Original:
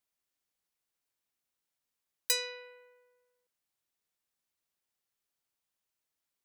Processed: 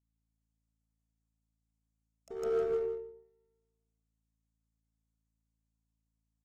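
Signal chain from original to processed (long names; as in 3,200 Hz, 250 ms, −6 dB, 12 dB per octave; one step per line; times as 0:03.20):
high-shelf EQ 2,800 Hz −3 dB
in parallel at −8 dB: wave folding −31.5 dBFS
on the sum: pitch-shifted copies added −3 semitones −3 dB, +7 semitones −3 dB
graphic EQ with 10 bands 250 Hz +9 dB, 1,000 Hz +3 dB, 2,000 Hz −9 dB, 4,000 Hz −10 dB, 8,000 Hz +12 dB, 16,000 Hz −11 dB
reverb whose tail is shaped and stops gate 460 ms flat, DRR −4.5 dB
treble cut that deepens with the level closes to 530 Hz, closed at −39 dBFS
gain into a clipping stage and back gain 33 dB
repeating echo 156 ms, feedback 23%, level −7 dB
mains hum 60 Hz, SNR 17 dB
pitch shifter −1.5 semitones
expander for the loud parts 2.5 to 1, over −50 dBFS
level +5 dB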